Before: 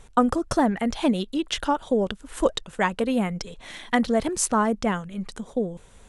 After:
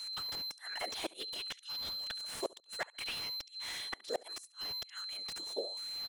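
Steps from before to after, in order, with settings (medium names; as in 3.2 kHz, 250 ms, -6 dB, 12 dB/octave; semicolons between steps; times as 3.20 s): differentiator; in parallel at +1.5 dB: compression 10:1, threshold -45 dBFS, peak gain reduction 25 dB; on the sum: whisper effect; whistle 4.1 kHz -41 dBFS; LFO high-pass sine 0.69 Hz 340–3600 Hz; inverted gate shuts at -21 dBFS, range -32 dB; on a send: feedback delay 70 ms, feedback 21%, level -23 dB; on the sum: slew-rate limiter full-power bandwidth 45 Hz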